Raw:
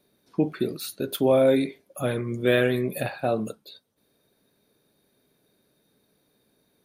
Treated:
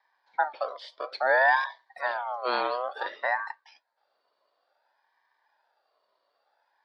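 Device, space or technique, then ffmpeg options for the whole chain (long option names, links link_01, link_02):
voice changer toy: -filter_complex "[0:a]asettb=1/sr,asplit=3[link_01][link_02][link_03];[link_01]atrim=end=1.414[link_04];[link_02]atrim=start=1.41:end=2.01,asetpts=PTS-STARTPTS,afade=type=in:duration=0.004:curve=qsin,afade=type=out:start_time=0.596:duration=0.004:curve=qsin,highshelf=frequency=2800:gain=8[link_05];[link_03]atrim=start=2.006[link_06];[link_04][link_05]acrossfade=duration=0.004:curve1=hsin:curve2=qsin[link_07];[link_07][link_06]acrossfade=duration=0.004:curve1=qsin:curve2=hsin,aeval=exprs='val(0)*sin(2*PI*1100*n/s+1100*0.25/0.57*sin(2*PI*0.57*n/s))':channel_layout=same,highpass=520,equalizer=frequency=580:width_type=q:width=4:gain=6,equalizer=frequency=880:width_type=q:width=4:gain=8,equalizer=frequency=1300:width_type=q:width=4:gain=-6,equalizer=frequency=1800:width_type=q:width=4:gain=5,equalizer=frequency=2700:width_type=q:width=4:gain=-9,equalizer=frequency=4200:width_type=q:width=4:gain=9,lowpass=frequency=4200:width=0.5412,lowpass=frequency=4200:width=1.3066,volume=-3dB"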